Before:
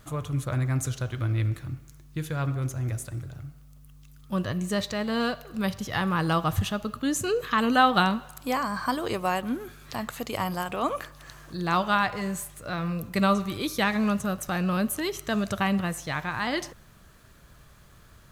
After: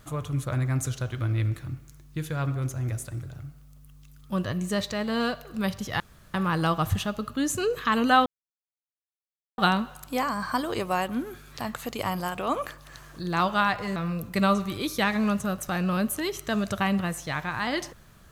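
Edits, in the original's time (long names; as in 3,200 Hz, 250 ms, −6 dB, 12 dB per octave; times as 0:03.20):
0:06.00: splice in room tone 0.34 s
0:07.92: splice in silence 1.32 s
0:12.30–0:12.76: remove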